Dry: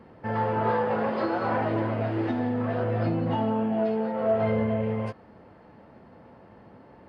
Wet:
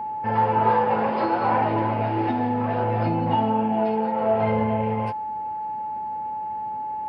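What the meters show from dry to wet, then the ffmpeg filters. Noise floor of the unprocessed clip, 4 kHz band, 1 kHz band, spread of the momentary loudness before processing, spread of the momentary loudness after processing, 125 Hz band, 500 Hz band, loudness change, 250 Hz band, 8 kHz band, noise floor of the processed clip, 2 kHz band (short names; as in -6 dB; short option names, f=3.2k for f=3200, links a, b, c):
-52 dBFS, +4.0 dB, +9.5 dB, 4 LU, 10 LU, +2.0 dB, +2.0 dB, +3.0 dB, +2.0 dB, n/a, -30 dBFS, +2.5 dB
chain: -af "aeval=exprs='val(0)+0.0178*sin(2*PI*860*n/s)':c=same,superequalizer=9b=2:12b=1.58:15b=0.398,volume=2dB"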